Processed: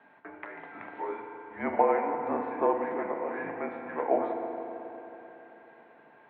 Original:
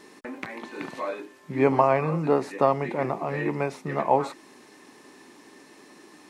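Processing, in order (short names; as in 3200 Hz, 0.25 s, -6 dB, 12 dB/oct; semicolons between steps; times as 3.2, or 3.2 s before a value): three-band isolator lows -21 dB, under 490 Hz, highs -22 dB, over 2400 Hz; mistuned SSB -180 Hz 420–3600 Hz; FDN reverb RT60 3.6 s, high-frequency decay 0.65×, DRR 2.5 dB; gain -3 dB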